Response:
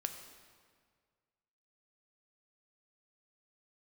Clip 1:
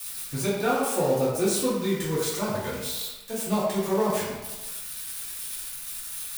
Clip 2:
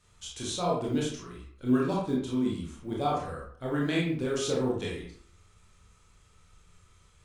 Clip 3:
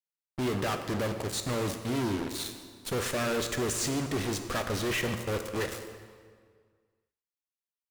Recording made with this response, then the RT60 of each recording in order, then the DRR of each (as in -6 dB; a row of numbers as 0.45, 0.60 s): 3; 1.2, 0.60, 1.9 s; -11.0, -4.5, 6.0 dB